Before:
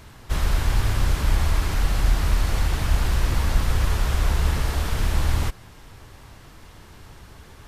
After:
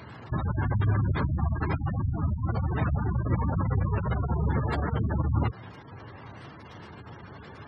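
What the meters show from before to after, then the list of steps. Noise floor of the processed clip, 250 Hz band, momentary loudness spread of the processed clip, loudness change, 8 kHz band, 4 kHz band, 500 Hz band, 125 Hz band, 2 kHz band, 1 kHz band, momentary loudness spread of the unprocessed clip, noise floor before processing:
−46 dBFS, +2.5 dB, 19 LU, −4.0 dB, below −30 dB, below −15 dB, −1.0 dB, −1.5 dB, −7.0 dB, −2.0 dB, 3 LU, −46 dBFS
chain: gate on every frequency bin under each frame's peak −25 dB strong
high-pass filter 94 Hz 24 dB per octave
level +4.5 dB

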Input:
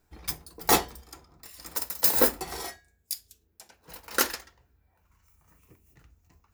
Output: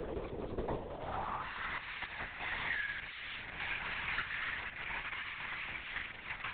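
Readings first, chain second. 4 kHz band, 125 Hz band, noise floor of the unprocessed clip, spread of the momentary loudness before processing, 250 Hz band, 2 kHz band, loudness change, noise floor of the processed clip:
−9.5 dB, −1.5 dB, −69 dBFS, 18 LU, −10.5 dB, +1.5 dB, −13.0 dB, −48 dBFS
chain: converter with a step at zero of −27 dBFS
downward compressor 5 to 1, threshold −29 dBFS, peak gain reduction 13.5 dB
band-pass filter sweep 420 Hz → 2,100 Hz, 0:00.73–0:01.84
linear-prediction vocoder at 8 kHz whisper
multiband upward and downward compressor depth 40%
level +3.5 dB

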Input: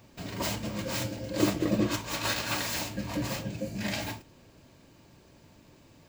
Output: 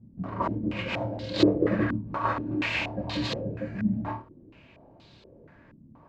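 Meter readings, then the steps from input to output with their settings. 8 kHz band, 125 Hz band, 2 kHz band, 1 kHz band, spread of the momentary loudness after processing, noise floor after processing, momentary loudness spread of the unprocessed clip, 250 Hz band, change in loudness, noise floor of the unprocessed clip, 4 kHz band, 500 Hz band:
below −15 dB, +2.5 dB, +2.0 dB, +5.0 dB, 9 LU, −55 dBFS, 7 LU, +4.0 dB, +2.5 dB, −58 dBFS, −1.5 dB, +4.5 dB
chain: flutter between parallel walls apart 4.6 metres, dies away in 0.21 s
low-pass on a step sequencer 4.2 Hz 210–3,900 Hz

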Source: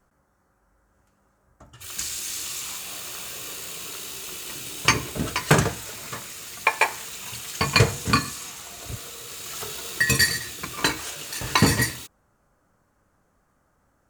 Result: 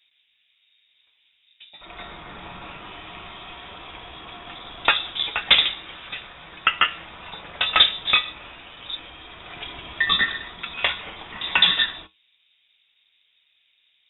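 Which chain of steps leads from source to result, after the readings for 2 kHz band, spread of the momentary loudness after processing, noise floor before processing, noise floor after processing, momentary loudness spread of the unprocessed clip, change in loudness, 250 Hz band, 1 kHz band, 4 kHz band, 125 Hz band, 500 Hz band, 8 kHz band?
+1.5 dB, 22 LU, −67 dBFS, −66 dBFS, 15 LU, +4.5 dB, −13.5 dB, −1.0 dB, +8.0 dB, −18.5 dB, −8.5 dB, below −40 dB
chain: tuned comb filter 130 Hz, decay 0.17 s, harmonics all, mix 60%
voice inversion scrambler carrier 3,700 Hz
level +6 dB

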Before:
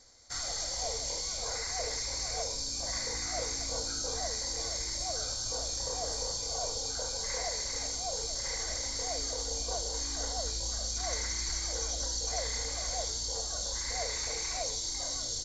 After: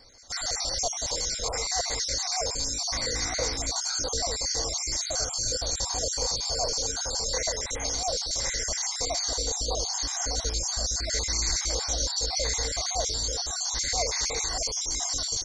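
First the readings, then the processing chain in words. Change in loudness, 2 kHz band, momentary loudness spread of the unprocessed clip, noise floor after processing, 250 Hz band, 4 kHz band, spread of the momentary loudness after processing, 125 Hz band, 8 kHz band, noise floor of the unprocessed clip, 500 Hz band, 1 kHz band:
+6.0 dB, +5.5 dB, 1 LU, −34 dBFS, +5.5 dB, +6.0 dB, 2 LU, +5.5 dB, +5.5 dB, −37 dBFS, +5.5 dB, +5.5 dB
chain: time-frequency cells dropped at random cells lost 40%
level +8 dB

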